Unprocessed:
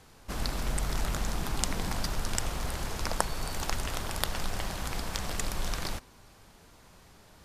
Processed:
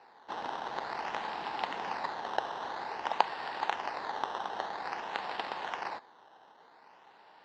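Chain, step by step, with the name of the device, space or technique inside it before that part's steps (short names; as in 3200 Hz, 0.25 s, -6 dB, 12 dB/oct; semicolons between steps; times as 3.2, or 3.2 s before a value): circuit-bent sampling toy (decimation with a swept rate 13×, swing 100% 0.51 Hz; speaker cabinet 570–4200 Hz, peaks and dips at 580 Hz -4 dB, 850 Hz +7 dB, 1300 Hz -5 dB, 2300 Hz -7 dB, 3400 Hz -5 dB); gain +2.5 dB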